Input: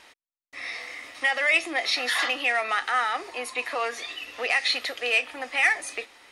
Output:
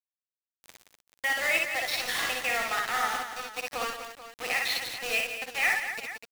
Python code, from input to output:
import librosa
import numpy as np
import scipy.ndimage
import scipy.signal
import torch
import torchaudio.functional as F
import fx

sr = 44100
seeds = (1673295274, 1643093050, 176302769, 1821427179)

p1 = fx.high_shelf(x, sr, hz=2100.0, db=-2.5)
p2 = np.where(np.abs(p1) >= 10.0 ** (-26.5 / 20.0), p1, 0.0)
p3 = p2 + fx.echo_multitap(p2, sr, ms=(47, 59, 67, 174, 249, 437), db=(-12.5, -4.0, -8.5, -9.5, -10.0, -12.5), dry=0)
y = F.gain(torch.from_numpy(p3), -4.5).numpy()